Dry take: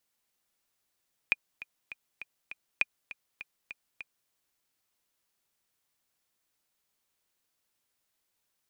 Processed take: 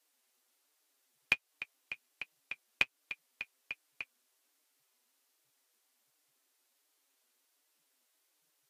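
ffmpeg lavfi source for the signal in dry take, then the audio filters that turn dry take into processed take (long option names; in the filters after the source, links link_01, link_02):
-f lavfi -i "aevalsrc='pow(10,(-10.5-17*gte(mod(t,5*60/201),60/201))/20)*sin(2*PI*2440*mod(t,60/201))*exp(-6.91*mod(t,60/201)/0.03)':duration=2.98:sample_rate=44100"
-filter_complex "[0:a]asplit=2[link_01][link_02];[link_02]acompressor=threshold=-34dB:ratio=6,volume=3dB[link_03];[link_01][link_03]amix=inputs=2:normalize=0,flanger=delay=6.4:depth=1.9:regen=42:speed=1.3:shape=triangular" -ar 44100 -c:a libvorbis -b:a 48k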